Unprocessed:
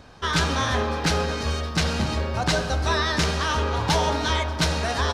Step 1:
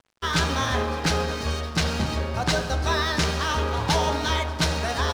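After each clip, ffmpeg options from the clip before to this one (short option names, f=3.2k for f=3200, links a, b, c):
-af "aeval=exprs='sgn(val(0))*max(abs(val(0))-0.00891,0)':c=same"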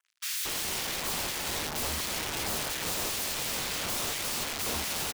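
-filter_complex "[0:a]adynamicequalizer=threshold=0.00891:dfrequency=4300:dqfactor=1.5:tfrequency=4300:tqfactor=1.5:attack=5:release=100:ratio=0.375:range=2.5:mode=cutabove:tftype=bell,aeval=exprs='(mod(22.4*val(0)+1,2)-1)/22.4':c=same,acrossover=split=1500[a][b];[a]adelay=230[c];[c][b]amix=inputs=2:normalize=0"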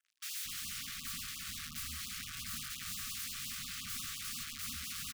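-af "afftfilt=real='re*(1-between(b*sr/4096,270,1100))':imag='im*(1-between(b*sr/4096,270,1100))':win_size=4096:overlap=0.75,alimiter=level_in=2.5dB:limit=-24dB:level=0:latency=1:release=43,volume=-2.5dB,afftfilt=real='re*(1-between(b*sr/1024,220*pow(1900/220,0.5+0.5*sin(2*PI*5.7*pts/sr))/1.41,220*pow(1900/220,0.5+0.5*sin(2*PI*5.7*pts/sr))*1.41))':imag='im*(1-between(b*sr/1024,220*pow(1900/220,0.5+0.5*sin(2*PI*5.7*pts/sr))/1.41,220*pow(1900/220,0.5+0.5*sin(2*PI*5.7*pts/sr))*1.41))':win_size=1024:overlap=0.75,volume=-4.5dB"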